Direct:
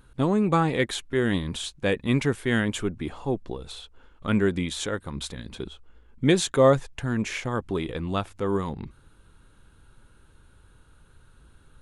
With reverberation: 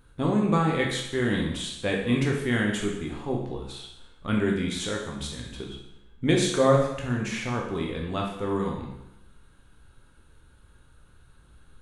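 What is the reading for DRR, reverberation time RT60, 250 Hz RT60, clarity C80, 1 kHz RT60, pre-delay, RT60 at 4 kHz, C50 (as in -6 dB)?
-1.0 dB, 0.85 s, 0.85 s, 6.5 dB, 0.85 s, 14 ms, 0.85 s, 3.5 dB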